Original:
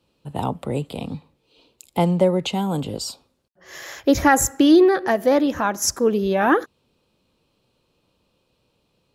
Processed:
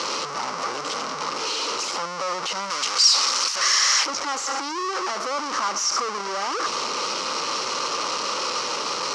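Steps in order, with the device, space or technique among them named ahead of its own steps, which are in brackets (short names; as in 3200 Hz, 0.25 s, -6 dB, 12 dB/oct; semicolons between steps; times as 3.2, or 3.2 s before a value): home computer beeper (infinite clipping; speaker cabinet 640–5900 Hz, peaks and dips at 700 Hz -8 dB, 1200 Hz +9 dB, 1700 Hz -8 dB, 2500 Hz -5 dB, 3500 Hz -9 dB, 5600 Hz +7 dB); 2.7–4.06 tilt shelf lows -8.5 dB, about 1100 Hz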